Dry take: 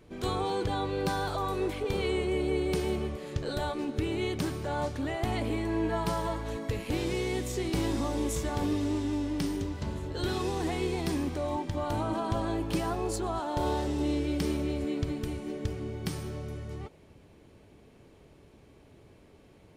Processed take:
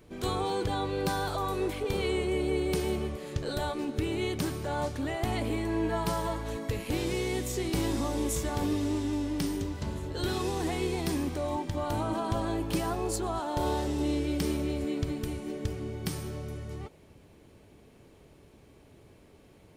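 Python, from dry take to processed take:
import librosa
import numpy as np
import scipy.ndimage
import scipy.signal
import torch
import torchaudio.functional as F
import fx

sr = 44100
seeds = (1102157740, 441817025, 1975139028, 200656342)

y = fx.high_shelf(x, sr, hz=8900.0, db=7.5)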